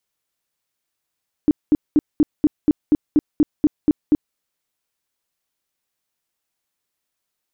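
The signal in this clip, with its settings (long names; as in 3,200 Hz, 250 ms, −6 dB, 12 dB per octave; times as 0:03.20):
tone bursts 300 Hz, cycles 9, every 0.24 s, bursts 12, −9.5 dBFS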